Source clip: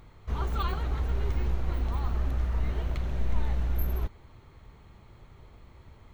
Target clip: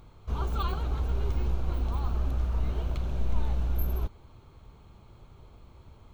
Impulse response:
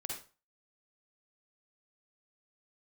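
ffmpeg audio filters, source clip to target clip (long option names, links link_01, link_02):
-af "equalizer=frequency=1900:width_type=o:width=0.34:gain=-11.5"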